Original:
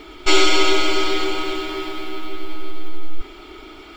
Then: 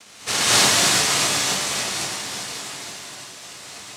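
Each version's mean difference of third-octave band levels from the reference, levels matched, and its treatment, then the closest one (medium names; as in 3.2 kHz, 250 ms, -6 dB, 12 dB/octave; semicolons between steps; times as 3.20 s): 9.5 dB: Chebyshev low-pass 2.4 kHz; noise-vocoded speech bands 1; crackle 460 per s -54 dBFS; gated-style reverb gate 270 ms rising, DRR -8 dB; trim -6.5 dB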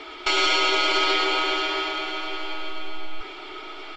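6.0 dB: three-band isolator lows -18 dB, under 410 Hz, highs -21 dB, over 6.3 kHz; peak limiter -16 dBFS, peak gain reduction 10.5 dB; doubling 14 ms -12 dB; delay 1135 ms -15 dB; trim +4 dB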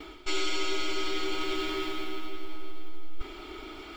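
4.5 dB: gate with hold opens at -33 dBFS; dynamic bell 720 Hz, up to -5 dB, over -37 dBFS, Q 1.2; reverse; compression 4:1, threshold -23 dBFS, peak gain reduction 13 dB; reverse; feedback echo behind a high-pass 142 ms, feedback 73%, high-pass 3.9 kHz, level -14 dB; trim -3 dB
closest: third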